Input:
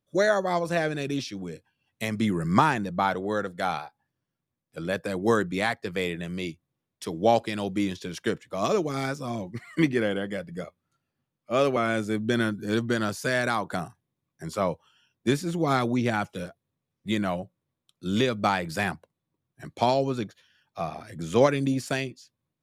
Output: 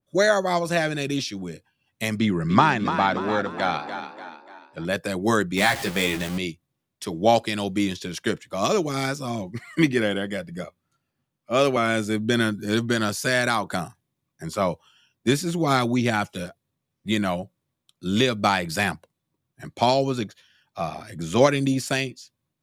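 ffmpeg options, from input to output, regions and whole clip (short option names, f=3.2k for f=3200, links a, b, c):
-filter_complex "[0:a]asettb=1/sr,asplit=3[a][b][c];[a]atrim=end=2.174[d];[b]atrim=start=2.17:end=4.85,asetpts=PTS-STARTPTS,afade=t=in:d=0.004:c=qsin,afade=t=out:st=2.676:d=0.004:c=qsin,lowpass=4.6k,asplit=6[e][f][g][h][i][j];[f]adelay=293,afreqshift=38,volume=-9dB[k];[g]adelay=586,afreqshift=76,volume=-15.4dB[l];[h]adelay=879,afreqshift=114,volume=-21.8dB[m];[i]adelay=1172,afreqshift=152,volume=-28.1dB[n];[j]adelay=1465,afreqshift=190,volume=-34.5dB[o];[e][k][l][m][n][o]amix=inputs=6:normalize=0,atrim=end_sample=118188[p];[c]atrim=start=4.846[q];[d][p]acrossfade=d=0.004:c1=hsin:c2=qsin[r];[r][q]acrossfade=d=0.004:c1=qsin:c2=hsin,asettb=1/sr,asplit=3[s][t][u];[s]atrim=end=5.574[v];[t]atrim=start=5.57:end=6.38,asetpts=PTS-STARTPTS,afade=t=in:d=0.004:c=qsin,afade=t=out:st=0.806:d=0.004:c=qsin,aeval=exprs='val(0)+0.5*0.0251*sgn(val(0))':c=same,asplit=2[w][x];[x]adelay=15,volume=-6dB[y];[w][y]amix=inputs=2:normalize=0,atrim=end_sample=35721[z];[u]atrim=start=6.376[aa];[v][z]acrossfade=d=0.004:c1=hsin:c2=qsin[ab];[ab][aa]acrossfade=d=0.004:c1=qsin:c2=hsin,bandreject=f=470:w=12,adynamicequalizer=threshold=0.0126:dfrequency=2300:dqfactor=0.7:tfrequency=2300:tqfactor=0.7:attack=5:release=100:ratio=0.375:range=2.5:mode=boostabove:tftype=highshelf,volume=3dB"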